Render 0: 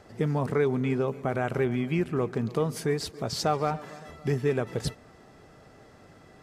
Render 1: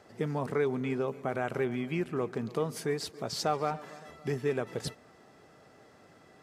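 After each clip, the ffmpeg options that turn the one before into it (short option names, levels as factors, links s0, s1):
-af "highpass=f=200:p=1,volume=0.708"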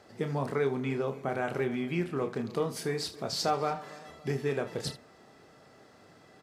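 -filter_complex "[0:a]equalizer=f=4300:w=2.2:g=3.5,asplit=2[s0][s1];[s1]aecho=0:1:29|76:0.422|0.168[s2];[s0][s2]amix=inputs=2:normalize=0"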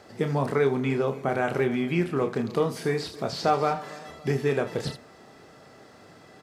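-filter_complex "[0:a]acrossover=split=3500[s0][s1];[s1]acompressor=threshold=0.00447:ratio=4:attack=1:release=60[s2];[s0][s2]amix=inputs=2:normalize=0,volume=2"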